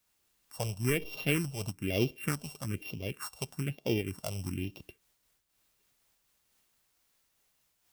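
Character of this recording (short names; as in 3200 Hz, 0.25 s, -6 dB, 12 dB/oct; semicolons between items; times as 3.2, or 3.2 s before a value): a buzz of ramps at a fixed pitch in blocks of 16 samples; phasing stages 4, 1.1 Hz, lowest notch 290–1700 Hz; a quantiser's noise floor 12-bit, dither triangular; noise-modulated level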